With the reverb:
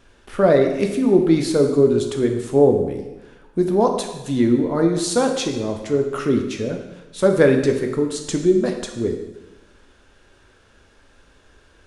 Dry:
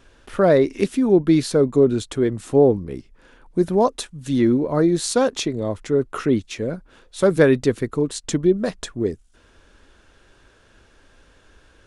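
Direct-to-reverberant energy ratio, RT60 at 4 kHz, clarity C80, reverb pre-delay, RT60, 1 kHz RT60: 3.5 dB, 1.0 s, 8.0 dB, 4 ms, 1.1 s, 1.1 s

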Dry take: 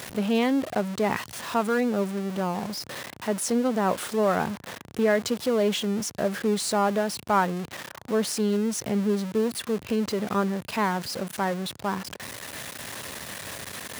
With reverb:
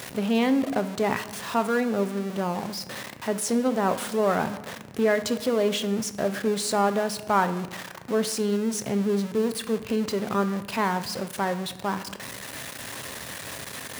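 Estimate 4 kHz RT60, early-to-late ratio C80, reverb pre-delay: 0.75 s, 15.5 dB, 7 ms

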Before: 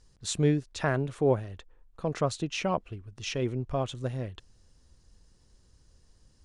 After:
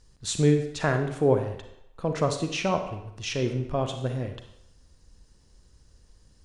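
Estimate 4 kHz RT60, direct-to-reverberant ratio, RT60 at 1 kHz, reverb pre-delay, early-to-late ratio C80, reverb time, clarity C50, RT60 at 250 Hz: 0.70 s, 6.0 dB, 0.85 s, 33 ms, 10.0 dB, 0.80 s, 7.5 dB, 0.75 s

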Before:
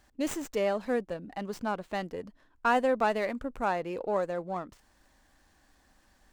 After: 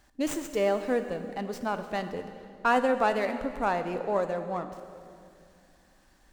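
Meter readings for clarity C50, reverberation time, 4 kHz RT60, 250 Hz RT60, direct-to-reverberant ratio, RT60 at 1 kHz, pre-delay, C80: 9.5 dB, 2.4 s, 2.1 s, 3.0 s, 8.0 dB, 2.2 s, 6 ms, 10.5 dB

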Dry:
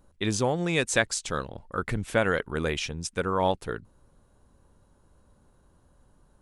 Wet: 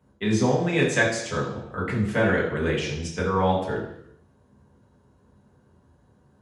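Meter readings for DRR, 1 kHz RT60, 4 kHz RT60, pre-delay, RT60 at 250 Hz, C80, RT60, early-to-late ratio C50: -4.5 dB, 0.85 s, 0.80 s, 5 ms, 0.80 s, 7.5 dB, 0.80 s, 5.0 dB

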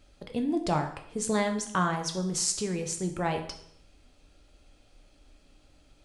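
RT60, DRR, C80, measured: 0.70 s, 4.0 dB, 12.0 dB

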